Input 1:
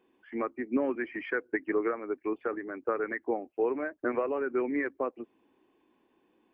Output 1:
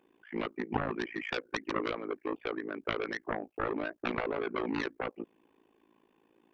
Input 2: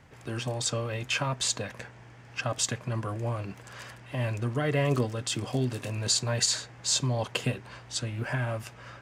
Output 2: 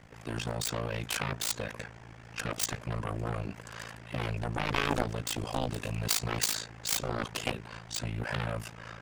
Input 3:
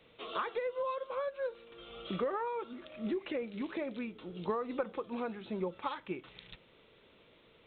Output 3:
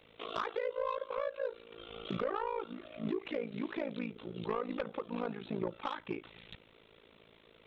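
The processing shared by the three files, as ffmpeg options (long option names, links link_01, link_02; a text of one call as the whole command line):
ffmpeg -i in.wav -af "aeval=exprs='0.251*(cos(1*acos(clip(val(0)/0.251,-1,1)))-cos(1*PI/2))+0.1*(cos(7*acos(clip(val(0)/0.251,-1,1)))-cos(7*PI/2))':channel_layout=same,tremolo=f=55:d=0.947" out.wav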